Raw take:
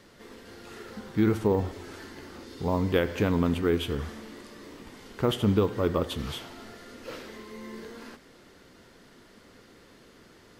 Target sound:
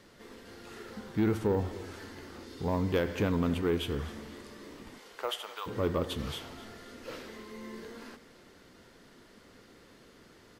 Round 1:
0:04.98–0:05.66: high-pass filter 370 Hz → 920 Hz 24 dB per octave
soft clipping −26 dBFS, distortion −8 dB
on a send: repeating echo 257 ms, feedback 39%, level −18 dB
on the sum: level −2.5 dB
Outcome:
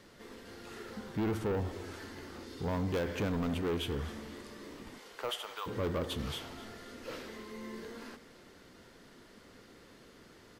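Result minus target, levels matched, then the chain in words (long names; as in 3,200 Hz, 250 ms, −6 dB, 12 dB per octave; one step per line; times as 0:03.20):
soft clipping: distortion +10 dB
0:04.98–0:05.66: high-pass filter 370 Hz → 920 Hz 24 dB per octave
soft clipping −16.5 dBFS, distortion −18 dB
on a send: repeating echo 257 ms, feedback 39%, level −18 dB
on the sum: level −2.5 dB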